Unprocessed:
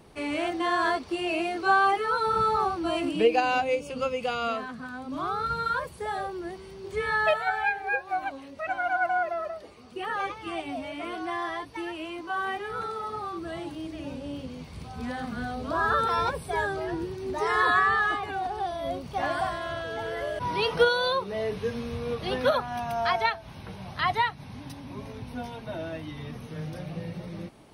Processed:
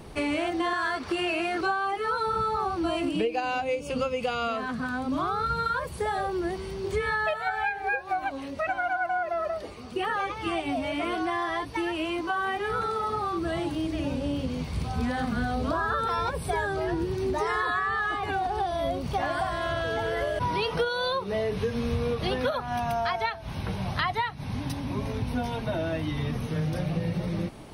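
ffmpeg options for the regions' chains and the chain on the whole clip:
-filter_complex "[0:a]asettb=1/sr,asplit=3[a][b][c];[a]atrim=end=0.734[d];[b]atrim=start=0.73:end=1.61,asetpts=PTS-STARTPTS,afade=t=in:d=0.004:c=qsin,afade=t=out:st=0.876:d=0.004:c=qsin,highpass=66,equalizer=f=1.5k:t=o:w=1.1:g=9.5,acrossover=split=170|3000[e][f][g];[f]acompressor=threshold=-27dB:ratio=2.5:attack=3.2:release=140:knee=2.83:detection=peak[h];[e][h][g]amix=inputs=3:normalize=0[i];[c]atrim=start=1.606[j];[d][i]acrossfade=d=0.004:c1=hsin:c2=qsin[k];[k][j]acrossfade=d=0.004:c1=qsin:c2=hsin,acompressor=threshold=-33dB:ratio=6,lowshelf=f=93:g=7.5,volume=7.5dB"

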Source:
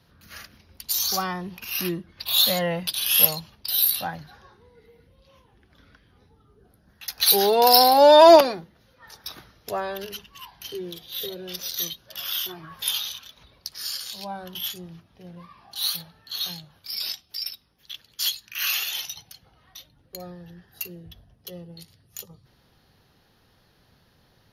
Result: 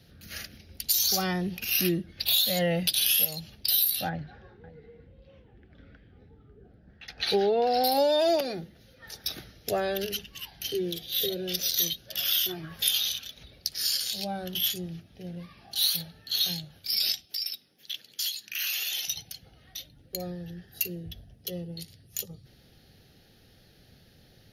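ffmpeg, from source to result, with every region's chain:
-filter_complex "[0:a]asettb=1/sr,asplit=3[a][b][c];[a]atrim=end=4.094[d];[b]atrim=start=4.09:end=7.84,asetpts=PTS-STARTPTS,afade=t=in:d=0.004:c=qsin,afade=t=out:st=3.746:d=0.004:c=qsin,lowpass=2k,aecho=1:1:547:0.119,atrim=end_sample=165375[e];[c]atrim=start=7.836[f];[d][e]acrossfade=d=0.004:c1=hsin:c2=qsin[g];[g][f]acrossfade=d=0.004:c1=qsin:c2=hsin,asettb=1/sr,asplit=3[h][i][j];[h]atrim=end=17.254[k];[i]atrim=start=17.25:end=19.08,asetpts=PTS-STARTPTS,afade=t=in:d=0.004:c=qsin,afade=t=out:st=1.826:d=0.004:c=qsin,highpass=200,acompressor=threshold=-32dB:ratio=4:attack=3.2:release=140:knee=1:detection=peak[l];[j]atrim=start=19.076[m];[k][l]acrossfade=d=0.004:c1=hsin:c2=qsin[n];[n][m]acrossfade=d=0.004:c1=qsin:c2=hsin,equalizer=f=1.1k:t=o:w=0.87:g=-11.5,bandreject=f=1k:w=5.3,acompressor=threshold=-25dB:ratio=16,volume=4.5dB"

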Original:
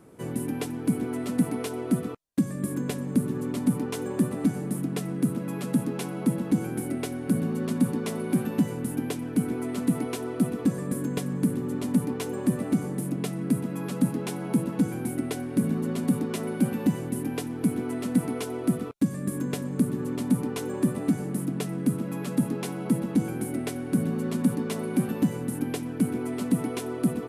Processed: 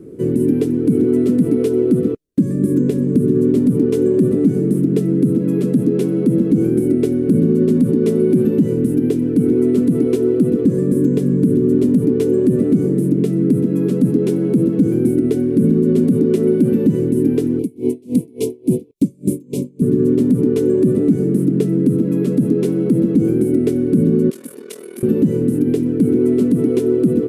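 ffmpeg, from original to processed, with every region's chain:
-filter_complex "[0:a]asettb=1/sr,asplit=3[a][b][c];[a]atrim=end=17.594[d];[b]atrim=start=17.59:end=19.82,asetpts=PTS-STARTPTS,afade=t=in:d=0.004:c=qsin,afade=t=out:st=2.226:d=0.004:c=qsin,asuperstop=centerf=1500:order=12:qfactor=1.4,highshelf=f=2.4k:g=9.5,aeval=exprs='val(0)*pow(10,-32*(0.5-0.5*cos(2*PI*3.5*n/s))/20)':c=same[e];[c]atrim=start=19.816[f];[d][e]acrossfade=d=0.004:c1=hsin:c2=qsin[g];[g][f]acrossfade=d=0.004:c1=qsin:c2=hsin,asettb=1/sr,asplit=3[h][i][j];[h]atrim=end=24.304[k];[i]atrim=start=24.3:end=25.03,asetpts=PTS-STARTPTS,afade=t=in:d=0.004:c=qsin,afade=t=out:st=0.726:d=0.004:c=qsin,highpass=990,highshelf=f=4.9k:g=8,aeval=exprs='val(0)*sin(2*PI*20*n/s)':c=same[l];[j]atrim=start=25.026[m];[k][l]acrossfade=d=0.004:c1=hsin:c2=qsin[n];[n][m]acrossfade=d=0.004:c1=qsin:c2=hsin,lowshelf=f=570:t=q:w=3:g=12.5,alimiter=limit=-5.5dB:level=0:latency=1:release=58"

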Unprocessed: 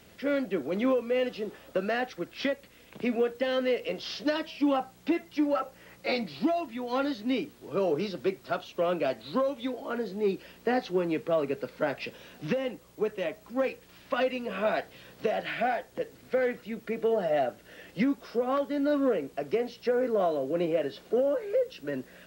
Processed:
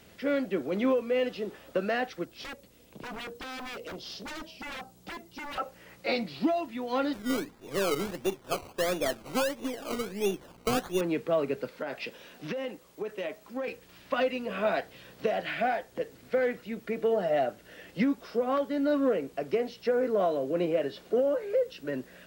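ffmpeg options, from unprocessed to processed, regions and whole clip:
-filter_complex "[0:a]asettb=1/sr,asplit=3[a][b][c];[a]atrim=end=2.254[d];[b]atrim=start=2.25:end=5.58,asetpts=PTS-STARTPTS,afade=t=in:d=0.004:c=qsin,afade=t=out:st=3.326:d=0.004:c=qsin,equalizer=f=1.9k:t=o:w=1.8:g=-11,aeval=exprs='0.0188*(abs(mod(val(0)/0.0188+3,4)-2)-1)':c=same[e];[c]atrim=start=5.576[f];[d][e]acrossfade=d=0.004:c1=hsin:c2=qsin[g];[g][f]acrossfade=d=0.004:c1=qsin:c2=hsin,asettb=1/sr,asplit=3[h][i][j];[h]atrim=end=7.134[k];[i]atrim=start=7.13:end=11.01,asetpts=PTS-STARTPTS,afade=t=in:d=0.004:c=qsin,afade=t=out:st=3.876:d=0.004:c=qsin,aeval=exprs='if(lt(val(0),0),0.708*val(0),val(0))':c=same,acrusher=samples=20:mix=1:aa=0.000001:lfo=1:lforange=12:lforate=1.5[l];[j]atrim=start=11.006[m];[k][l]acrossfade=d=0.004:c1=hsin:c2=qsin[n];[n][m]acrossfade=d=0.004:c1=qsin:c2=hsin,asettb=1/sr,asplit=3[o][p][q];[o]atrim=end=11.694[r];[p]atrim=start=11.69:end=13.68,asetpts=PTS-STARTPTS,afade=t=in:d=0.004:c=qsin,afade=t=out:st=1.986:d=0.004:c=qsin,equalizer=f=84:w=0.76:g=-11,acompressor=threshold=-29dB:ratio=10:attack=3.2:release=140:knee=1:detection=peak[s];[q]atrim=start=13.676[t];[r][s]acrossfade=d=0.004:c1=hsin:c2=qsin[u];[u][t]acrossfade=d=0.004:c1=qsin:c2=hsin"

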